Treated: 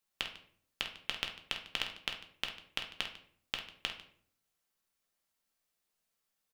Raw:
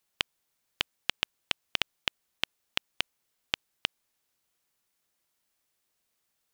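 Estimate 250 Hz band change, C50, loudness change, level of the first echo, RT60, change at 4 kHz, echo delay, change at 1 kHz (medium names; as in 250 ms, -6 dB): -5.0 dB, 8.5 dB, -5.0 dB, -9.5 dB, 0.60 s, -5.0 dB, 49 ms, -4.5 dB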